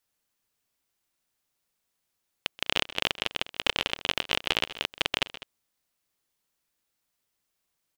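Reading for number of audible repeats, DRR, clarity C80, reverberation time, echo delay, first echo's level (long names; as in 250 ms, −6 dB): 2, no reverb audible, no reverb audible, no reverb audible, 129 ms, −19.0 dB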